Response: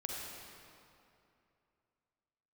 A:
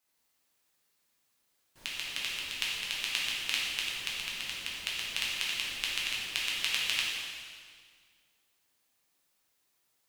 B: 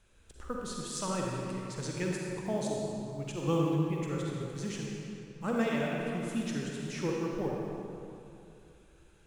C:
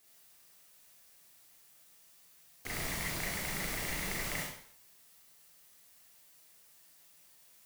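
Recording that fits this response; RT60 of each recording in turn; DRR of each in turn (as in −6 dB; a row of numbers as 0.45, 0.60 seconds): B; 1.9, 2.7, 0.60 seconds; −6.0, −2.5, −4.5 decibels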